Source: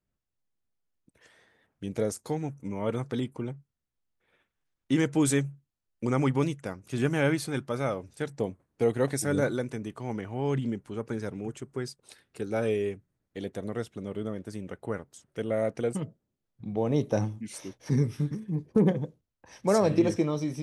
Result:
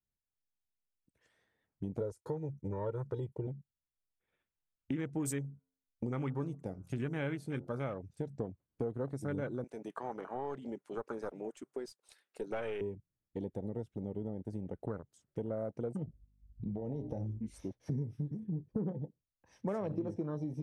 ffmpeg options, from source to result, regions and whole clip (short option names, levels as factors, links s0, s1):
-filter_complex "[0:a]asettb=1/sr,asplit=3[s0][s1][s2];[s0]atrim=end=2.004[s3];[s1]atrim=start=2:end=3.47,asetpts=PTS-STARTPTS,afade=t=in:d=0.004:c=qsin,afade=t=out:st=1.466:d=0.004:c=qsin,agate=range=0.0224:threshold=0.00501:ratio=3:release=100:detection=peak,aecho=1:1:2.1:0.89,atrim=end_sample=64827[s4];[s2]atrim=start=3.466[s5];[s3][s4]acrossfade=d=0.004:c1=hsin:c2=qsin[s6];[s6][s5]acrossfade=d=0.004:c1=qsin:c2=hsin,asettb=1/sr,asplit=3[s7][s8][s9];[s7]atrim=end=5.164[s10];[s8]atrim=start=5.16:end=7.84,asetpts=PTS-STARTPTS,afade=t=in:d=0.004:c=qsin,afade=t=out:st=2.676:d=0.004:c=qsin,highshelf=f=3800:g=5,bandreject=f=88.46:t=h:w=4,bandreject=f=176.92:t=h:w=4,bandreject=f=265.38:t=h:w=4,bandreject=f=353.84:t=h:w=4,bandreject=f=442.3:t=h:w=4,bandreject=f=530.76:t=h:w=4,bandreject=f=619.22:t=h:w=4,bandreject=f=707.68:t=h:w=4,bandreject=f=796.14:t=h:w=4,bandreject=f=884.6:t=h:w=4,bandreject=f=973.06:t=h:w=4,bandreject=f=1061.52:t=h:w=4,bandreject=f=1149.98:t=h:w=4,bandreject=f=1238.44:t=h:w=4,bandreject=f=1326.9:t=h:w=4,bandreject=f=1415.36:t=h:w=4,bandreject=f=1503.82:t=h:w=4[s11];[s9]atrim=start=7.836[s12];[s10][s11]acrossfade=d=0.004:c1=hsin:c2=qsin[s13];[s13][s12]acrossfade=d=0.004:c1=qsin:c2=hsin,asettb=1/sr,asplit=3[s14][s15][s16];[s14]atrim=end=9.644[s17];[s15]atrim=start=9.64:end=12.81,asetpts=PTS-STARTPTS,afade=t=in:d=0.004:c=qsin,afade=t=out:st=3.166:d=0.004:c=qsin,highpass=630,acontrast=54,aeval=exprs='(tanh(14.1*val(0)+0.35)-tanh(0.35))/14.1':c=same[s18];[s16]atrim=start=12.806[s19];[s17][s18]acrossfade=d=0.004:c1=hsin:c2=qsin[s20];[s20][s19]acrossfade=d=0.004:c1=qsin:c2=hsin,asettb=1/sr,asplit=3[s21][s22][s23];[s21]atrim=end=16.044[s24];[s22]atrim=start=16.04:end=17.65,asetpts=PTS-STARTPTS,afade=t=in:d=0.004:c=qsin,afade=t=out:st=1.606:d=0.004:c=qsin,bandreject=f=60:t=h:w=6,bandreject=f=120:t=h:w=6,bandreject=f=180:t=h:w=6,bandreject=f=240:t=h:w=6,bandreject=f=300:t=h:w=6,bandreject=f=360:t=h:w=6,bandreject=f=420:t=h:w=6,bandreject=f=480:t=h:w=6,bandreject=f=540:t=h:w=6,bandreject=f=600:t=h:w=6,acompressor=threshold=0.0316:ratio=8:attack=3.2:release=140:knee=1:detection=peak,aeval=exprs='val(0)+0.00112*(sin(2*PI*50*n/s)+sin(2*PI*2*50*n/s)/2+sin(2*PI*3*50*n/s)/3+sin(2*PI*4*50*n/s)/4+sin(2*PI*5*50*n/s)/5)':c=same[s25];[s23]atrim=start=17.646[s26];[s24][s25]acrossfade=d=0.004:c1=hsin:c2=qsin[s27];[s27][s26]acrossfade=d=0.004:c1=qsin:c2=hsin,afwtdn=0.0141,lowshelf=f=160:g=6,acompressor=threshold=0.0126:ratio=4,volume=1.19"